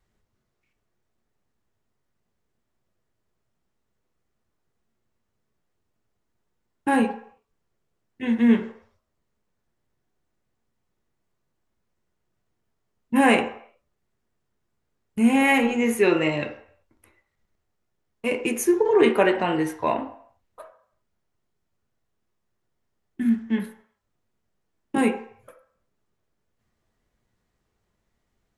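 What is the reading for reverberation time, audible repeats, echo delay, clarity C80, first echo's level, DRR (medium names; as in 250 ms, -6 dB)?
0.60 s, no echo, no echo, 13.0 dB, no echo, 3.0 dB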